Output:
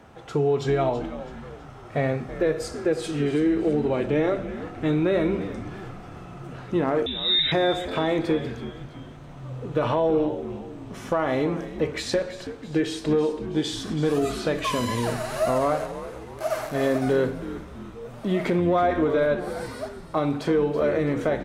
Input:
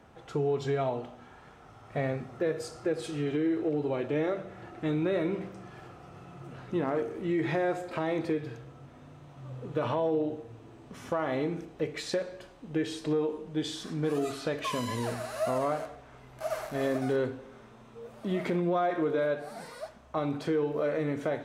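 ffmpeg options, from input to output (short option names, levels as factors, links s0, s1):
-filter_complex "[0:a]asettb=1/sr,asplit=3[s0][s1][s2];[s0]atrim=end=7.064[s3];[s1]atrim=start=7.06:end=7.52,asetpts=PTS-STARTPTS,afade=t=in:d=0.004:c=qsin,afade=t=out:st=0.456:d=0.004:c=qsin,lowpass=f=3400:t=q:w=0.5098,lowpass=f=3400:t=q:w=0.6013,lowpass=f=3400:t=q:w=0.9,lowpass=f=3400:t=q:w=2.563,afreqshift=-4000[s4];[s2]atrim=start=7.516[s5];[s3][s4]acrossfade=d=0.004:c1=hsin:c2=qsin[s6];[s6][s5]acrossfade=d=0.004:c1=qsin:c2=hsin,asplit=6[s7][s8][s9][s10][s11][s12];[s8]adelay=328,afreqshift=-96,volume=0.224[s13];[s9]adelay=656,afreqshift=-192,volume=0.11[s14];[s10]adelay=984,afreqshift=-288,volume=0.0537[s15];[s11]adelay=1312,afreqshift=-384,volume=0.0263[s16];[s12]adelay=1640,afreqshift=-480,volume=0.0129[s17];[s7][s13][s14][s15][s16][s17]amix=inputs=6:normalize=0,volume=2.11"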